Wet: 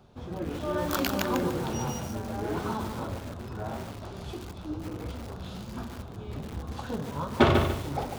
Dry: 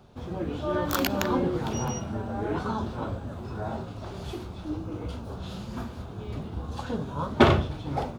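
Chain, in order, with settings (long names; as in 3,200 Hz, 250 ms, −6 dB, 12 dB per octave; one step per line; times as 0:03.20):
feedback echo at a low word length 146 ms, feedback 35%, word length 6 bits, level −5 dB
level −2.5 dB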